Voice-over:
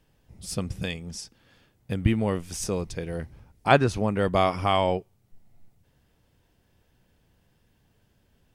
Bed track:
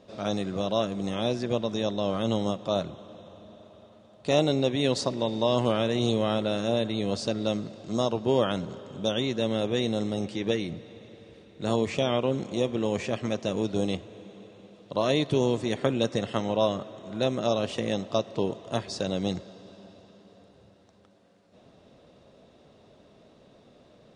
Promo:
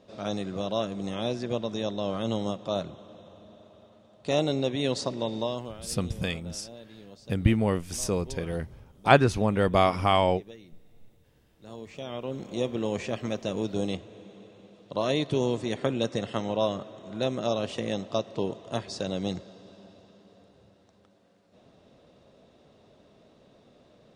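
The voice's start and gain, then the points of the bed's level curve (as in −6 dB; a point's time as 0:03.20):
5.40 s, +0.5 dB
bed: 0:05.39 −2.5 dB
0:05.81 −20 dB
0:11.59 −20 dB
0:12.62 −2 dB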